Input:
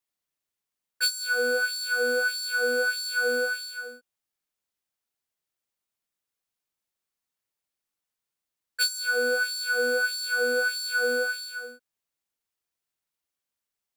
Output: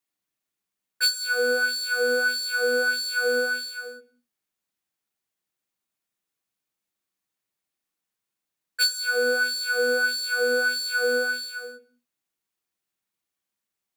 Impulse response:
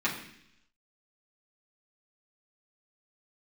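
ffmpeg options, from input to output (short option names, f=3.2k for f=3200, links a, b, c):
-filter_complex "[0:a]asplit=2[a][b];[1:a]atrim=start_sample=2205,afade=t=out:st=0.32:d=0.01,atrim=end_sample=14553,lowshelf=f=350:g=10[c];[b][c]afir=irnorm=-1:irlink=0,volume=-16.5dB[d];[a][d]amix=inputs=2:normalize=0"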